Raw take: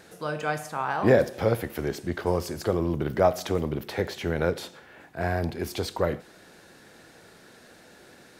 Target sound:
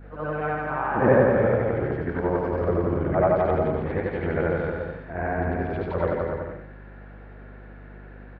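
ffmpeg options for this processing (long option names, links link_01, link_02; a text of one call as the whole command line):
ffmpeg -i in.wav -af "afftfilt=real='re':imag='-im':win_size=8192:overlap=0.75,lowpass=frequency=2100:width=0.5412,lowpass=frequency=2100:width=1.3066,aecho=1:1:170|289|372.3|430.6|471.4:0.631|0.398|0.251|0.158|0.1,aeval=exprs='val(0)+0.00398*(sin(2*PI*50*n/s)+sin(2*PI*2*50*n/s)/2+sin(2*PI*3*50*n/s)/3+sin(2*PI*4*50*n/s)/4+sin(2*PI*5*50*n/s)/5)':channel_layout=same,volume=5.5dB" out.wav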